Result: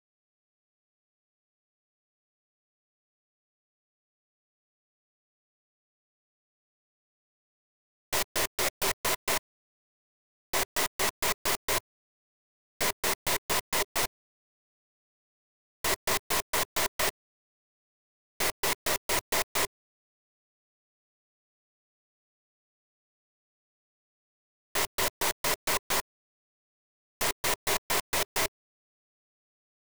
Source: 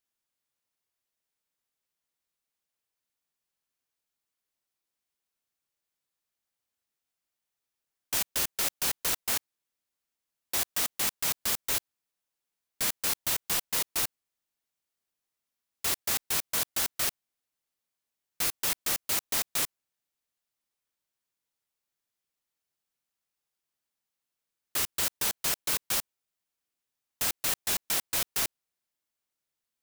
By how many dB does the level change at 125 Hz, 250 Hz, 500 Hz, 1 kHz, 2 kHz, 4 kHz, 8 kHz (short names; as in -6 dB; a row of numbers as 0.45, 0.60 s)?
+3.0, +4.0, +9.5, +7.5, +5.0, +1.0, -1.0 dB